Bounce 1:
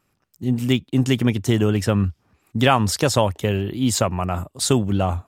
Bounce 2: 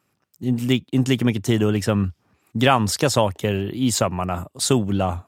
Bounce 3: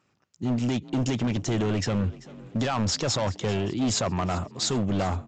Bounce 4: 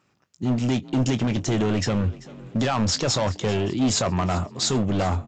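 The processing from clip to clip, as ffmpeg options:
ffmpeg -i in.wav -af "highpass=97" out.wav
ffmpeg -i in.wav -filter_complex "[0:a]alimiter=limit=-12.5dB:level=0:latency=1:release=29,aresample=16000,asoftclip=type=hard:threshold=-21.5dB,aresample=44100,asplit=5[link_01][link_02][link_03][link_04][link_05];[link_02]adelay=389,afreqshift=37,volume=-19.5dB[link_06];[link_03]adelay=778,afreqshift=74,volume=-25.5dB[link_07];[link_04]adelay=1167,afreqshift=111,volume=-31.5dB[link_08];[link_05]adelay=1556,afreqshift=148,volume=-37.6dB[link_09];[link_01][link_06][link_07][link_08][link_09]amix=inputs=5:normalize=0" out.wav
ffmpeg -i in.wav -filter_complex "[0:a]asplit=2[link_01][link_02];[link_02]adelay=23,volume=-13dB[link_03];[link_01][link_03]amix=inputs=2:normalize=0,volume=3dB" out.wav

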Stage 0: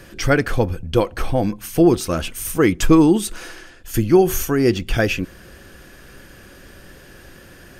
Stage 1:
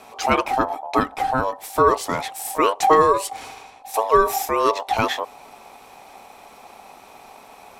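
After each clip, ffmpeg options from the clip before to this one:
ffmpeg -i in.wav -af "aeval=exprs='val(0)+0.00447*(sin(2*PI*50*n/s)+sin(2*PI*2*50*n/s)/2+sin(2*PI*3*50*n/s)/3+sin(2*PI*4*50*n/s)/4+sin(2*PI*5*50*n/s)/5)':channel_layout=same,aeval=exprs='val(0)*sin(2*PI*780*n/s)':channel_layout=same" out.wav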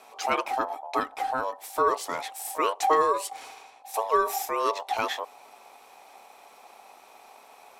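ffmpeg -i in.wav -af "bass=frequency=250:gain=-15,treble=frequency=4000:gain=1,volume=-6.5dB" out.wav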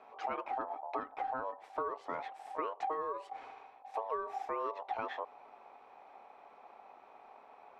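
ffmpeg -i in.wav -af "lowpass=1700,acompressor=threshold=-29dB:ratio=12,volume=-4dB" out.wav

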